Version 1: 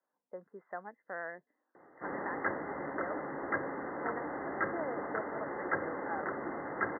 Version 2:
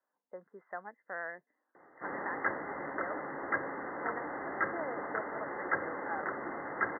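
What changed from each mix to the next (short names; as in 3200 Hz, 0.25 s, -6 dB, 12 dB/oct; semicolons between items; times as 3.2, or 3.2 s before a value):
master: add tilt shelf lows -3.5 dB, about 800 Hz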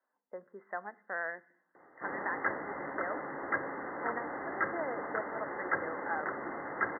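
reverb: on, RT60 0.65 s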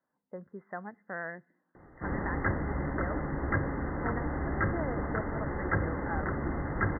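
speech: send -9.5 dB; master: remove HPF 460 Hz 12 dB/oct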